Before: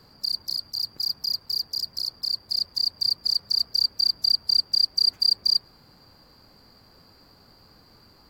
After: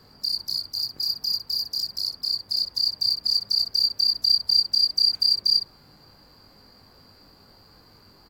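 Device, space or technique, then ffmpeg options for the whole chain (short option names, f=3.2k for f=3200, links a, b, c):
slapback doubling: -filter_complex "[0:a]asplit=3[a][b][c];[b]adelay=20,volume=-6dB[d];[c]adelay=62,volume=-11dB[e];[a][d][e]amix=inputs=3:normalize=0"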